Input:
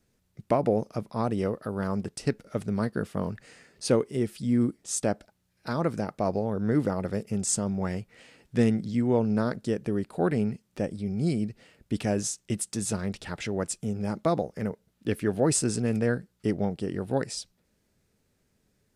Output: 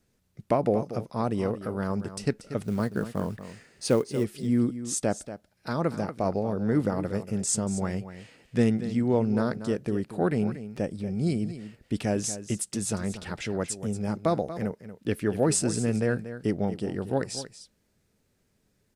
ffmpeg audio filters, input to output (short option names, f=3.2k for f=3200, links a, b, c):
-filter_complex "[0:a]asettb=1/sr,asplit=3[a][b][c];[a]atrim=end=2.634[d];[b]atrim=start=2.63:end=4.24,asetpts=PTS-STARTPTS,afade=t=in:d=0.004:c=qsin,afade=t=out:st=1.606:d=0.004:c=qsin,acrusher=bits=7:mode=log:mix=0:aa=0.000001[e];[c]atrim=start=4.236[f];[d][e]acrossfade=d=0.004:c1=hsin:c2=qsin[g];[g][f]acrossfade=d=0.004:c1=qsin:c2=hsin,asplit=2[h][i];[i]aecho=0:1:235:0.237[j];[h][j]amix=inputs=2:normalize=0"